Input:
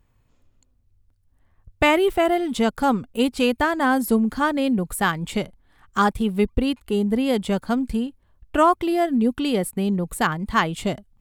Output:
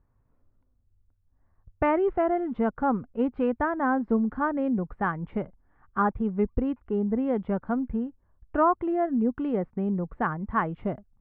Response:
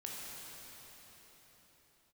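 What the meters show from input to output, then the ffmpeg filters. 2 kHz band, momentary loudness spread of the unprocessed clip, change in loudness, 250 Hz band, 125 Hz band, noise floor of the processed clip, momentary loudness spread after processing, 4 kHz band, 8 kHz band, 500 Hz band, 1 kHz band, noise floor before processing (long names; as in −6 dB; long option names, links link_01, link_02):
−9.5 dB, 8 LU, −5.5 dB, −5.0 dB, −5.0 dB, −69 dBFS, 8 LU, below −25 dB, below −40 dB, −5.0 dB, −5.0 dB, −63 dBFS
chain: -af "lowpass=frequency=1600:width=0.5412,lowpass=frequency=1600:width=1.3066,volume=-5dB"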